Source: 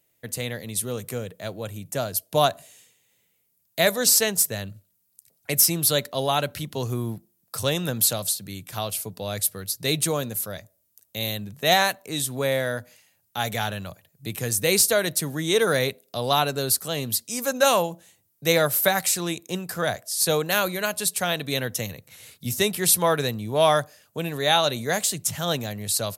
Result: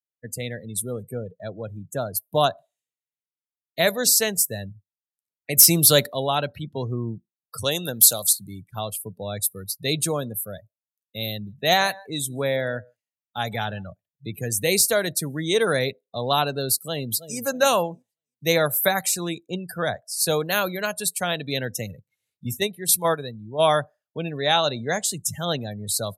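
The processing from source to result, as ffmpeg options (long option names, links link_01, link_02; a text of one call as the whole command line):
ffmpeg -i in.wav -filter_complex "[0:a]asettb=1/sr,asplit=3[link_01][link_02][link_03];[link_01]atrim=end=5.574[link_04];[link_02]atrim=start=5.57:end=6.13,asetpts=PTS-STARTPTS,afade=type=in:duration=0.004:curve=qsin,afade=type=out:start_time=0.556:duration=0.004:curve=qsin,acontrast=66[link_05];[link_03]atrim=start=6.126[link_06];[link_04][link_05]acrossfade=duration=0.004:curve1=hsin:curve2=qsin[link_07];[link_07][link_06]acrossfade=duration=0.004:curve1=qsin:curve2=hsin,asettb=1/sr,asplit=3[link_08][link_09][link_10];[link_08]atrim=end=7.644[link_11];[link_09]atrim=start=7.64:end=8.33,asetpts=PTS-STARTPTS,afade=type=in:duration=0.004:curve=qsin,afade=type=out:start_time=0.686:duration=0.004:curve=qsin,bass=frequency=250:gain=-6,treble=frequency=4000:gain=7[link_12];[link_10]atrim=start=8.326[link_13];[link_11][link_12]acrossfade=duration=0.004:curve1=hsin:curve2=qsin[link_14];[link_14][link_13]acrossfade=duration=0.004:curve1=qsin:curve2=hsin,asettb=1/sr,asplit=3[link_15][link_16][link_17];[link_15]atrim=end=11.314[link_18];[link_16]atrim=start=11.31:end=13.84,asetpts=PTS-STARTPTS,afade=type=in:duration=0.004:curve=qsin,afade=type=out:start_time=2.526:duration=0.004:curve=qsin,aecho=1:1:160:0.106,atrim=end_sample=111573[link_19];[link_17]atrim=start=13.836[link_20];[link_18][link_19]acrossfade=duration=0.004:curve1=hsin:curve2=qsin[link_21];[link_21][link_20]acrossfade=duration=0.004:curve1=qsin:curve2=hsin,asplit=2[link_22][link_23];[link_23]afade=type=in:start_time=16.85:duration=0.01,afade=type=out:start_time=17.38:duration=0.01,aecho=0:1:320|640|960|1280:0.266073|0.106429|0.0425716|0.0170286[link_24];[link_22][link_24]amix=inputs=2:normalize=0,asplit=3[link_25][link_26][link_27];[link_25]afade=type=out:start_time=22.56:duration=0.02[link_28];[link_26]agate=range=-7dB:threshold=-21dB:ratio=16:release=100:detection=peak,afade=type=in:start_time=22.56:duration=0.02,afade=type=out:start_time=23.7:duration=0.02[link_29];[link_27]afade=type=in:start_time=23.7:duration=0.02[link_30];[link_28][link_29][link_30]amix=inputs=3:normalize=0,asettb=1/sr,asplit=3[link_31][link_32][link_33];[link_31]atrim=end=24.384[link_34];[link_32]atrim=start=24.38:end=25.05,asetpts=PTS-STARTPTS,afade=type=in:duration=0.004:curve=qsin,afade=type=out:start_time=0.666:duration=0.004:curve=qsin,equalizer=frequency=14000:width=1.3:gain=-11[link_35];[link_33]atrim=start=25.046[link_36];[link_34][link_35]acrossfade=duration=0.004:curve1=hsin:curve2=qsin[link_37];[link_37][link_36]acrossfade=duration=0.004:curve1=qsin:curve2=hsin,afftdn=noise_reduction=35:noise_floor=-33" out.wav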